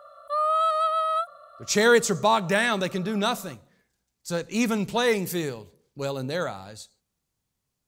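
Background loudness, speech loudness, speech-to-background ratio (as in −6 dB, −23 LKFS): −24.5 LKFS, −24.5 LKFS, 0.0 dB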